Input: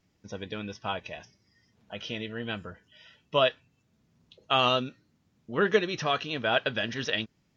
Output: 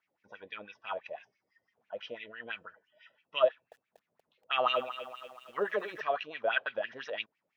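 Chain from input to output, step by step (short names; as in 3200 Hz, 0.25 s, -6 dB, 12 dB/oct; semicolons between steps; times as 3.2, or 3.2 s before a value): wah 6 Hz 520–2500 Hz, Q 4.3; 3.48–6.01 lo-fi delay 0.238 s, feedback 55%, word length 10-bit, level -12 dB; gain +4 dB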